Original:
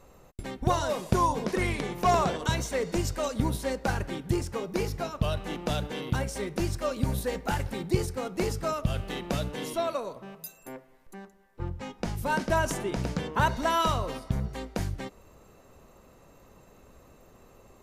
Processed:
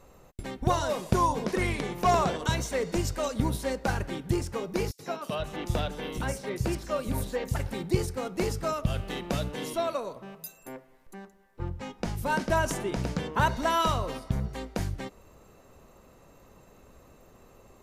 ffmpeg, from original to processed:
ffmpeg -i in.wav -filter_complex "[0:a]asettb=1/sr,asplit=3[link_01][link_02][link_03];[link_01]atrim=end=4.914[link_04];[link_02]atrim=start=4.91:end=7.56,asetpts=PTS-STARTPTS,afade=type=in:duration=0.004:curve=qsin,afade=type=out:start_time=2.646:duration=0.004:curve=qsin,acrossover=split=170|4700[link_05][link_06][link_07];[link_06]adelay=80[link_08];[link_05]adelay=480[link_09];[link_09][link_08][link_07]amix=inputs=3:normalize=0,atrim=end_sample=116865[link_10];[link_03]atrim=start=7.556[link_11];[link_04][link_10]acrossfade=duration=0.004:curve1=hsin:curve2=qsin[link_12];[link_12][link_11]acrossfade=duration=0.004:curve1=qsin:curve2=hsin" out.wav

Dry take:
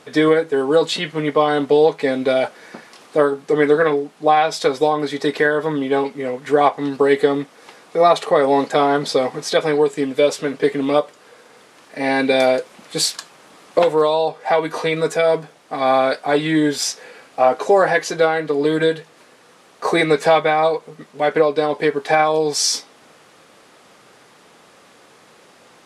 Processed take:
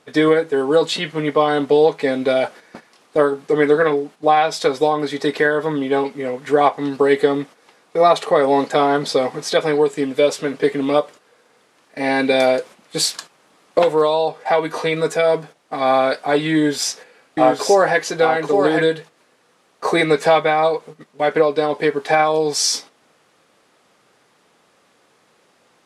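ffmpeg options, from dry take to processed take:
ffmpeg -i in.wav -filter_complex "[0:a]asettb=1/sr,asplit=3[link_01][link_02][link_03];[link_01]atrim=end=16.544[link_04];[link_02]atrim=start=16.54:end=18.82,asetpts=PTS-STARTPTS,afade=type=in:duration=0.004:curve=qsin,afade=type=out:start_time=2.276:duration=0.004:curve=qsin,aecho=1:1:829:0.562,atrim=end_sample=100548[link_05];[link_03]atrim=start=18.816[link_06];[link_04][link_05]acrossfade=duration=0.004:curve1=hsin:curve2=qsin[link_07];[link_07][link_06]acrossfade=duration=0.004:curve1=qsin:curve2=hsin,agate=range=-9dB:threshold=-35dB:ratio=16:detection=peak" out.wav

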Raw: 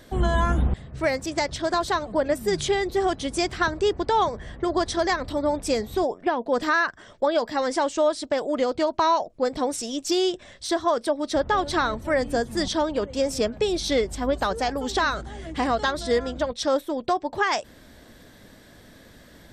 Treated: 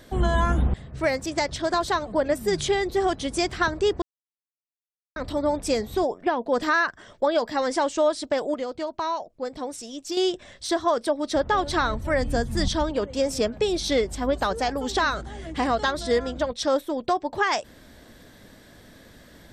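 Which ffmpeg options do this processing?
ffmpeg -i in.wav -filter_complex "[0:a]asettb=1/sr,asplit=3[link_01][link_02][link_03];[link_01]atrim=end=11.544[link_04];[link_02]atrim=start=11.54:end=12.91,asetpts=PTS-STARTPTS,afade=type=in:duration=0.004:curve=qsin,afade=type=out:start_time=1.366:duration=0.004:curve=qsin,asubboost=boost=10:cutoff=170[link_05];[link_03]atrim=start=12.906[link_06];[link_04][link_05]acrossfade=duration=0.004:curve1=hsin:curve2=qsin[link_07];[link_07][link_06]acrossfade=duration=0.004:curve1=qsin:curve2=hsin,asplit=5[link_08][link_09][link_10][link_11][link_12];[link_08]atrim=end=4.02,asetpts=PTS-STARTPTS,afade=type=out:start_time=4.016:duration=0.004:curve=hsin[link_13];[link_09]atrim=start=4.02:end=5.16,asetpts=PTS-STARTPTS,volume=0[link_14];[link_10]atrim=start=5.16:end=8.542,asetpts=PTS-STARTPTS,afade=type=in:duration=0.004:curve=hsin[link_15];[link_11]atrim=start=8.538:end=10.172,asetpts=PTS-STARTPTS,volume=-7dB[link_16];[link_12]atrim=start=10.168[link_17];[link_13][link_14][link_15]concat=n=3:v=0:a=1[link_18];[link_18][link_16]acrossfade=duration=0.004:curve1=hsin:curve2=hsin[link_19];[link_19][link_17]acrossfade=duration=0.004:curve1=hsin:curve2=hsin" out.wav

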